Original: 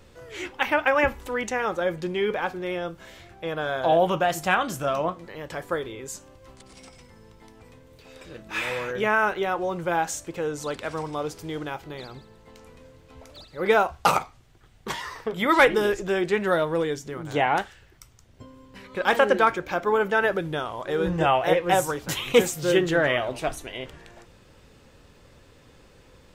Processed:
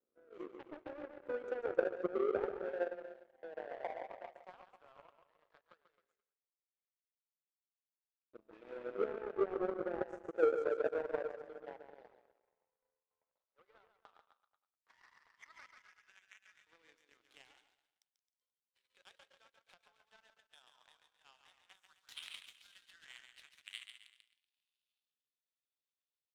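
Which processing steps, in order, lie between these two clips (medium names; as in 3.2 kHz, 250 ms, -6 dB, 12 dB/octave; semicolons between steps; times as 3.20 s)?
compression 20:1, threshold -30 dBFS, peak gain reduction 19.5 dB; LFO high-pass saw up 0.12 Hz 230–3000 Hz; bouncing-ball echo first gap 140 ms, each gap 0.9×, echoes 5; band-pass sweep 440 Hz -> 3.7 kHz, 14.24–17.75 s; power-law waveshaper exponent 2; trim +2.5 dB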